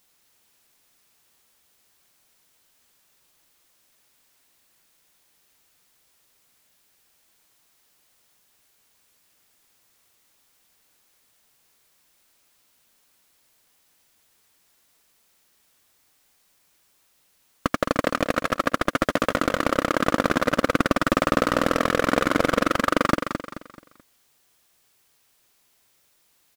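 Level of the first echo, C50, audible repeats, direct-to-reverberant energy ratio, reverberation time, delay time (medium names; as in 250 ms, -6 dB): -7.0 dB, no reverb, 4, no reverb, no reverb, 216 ms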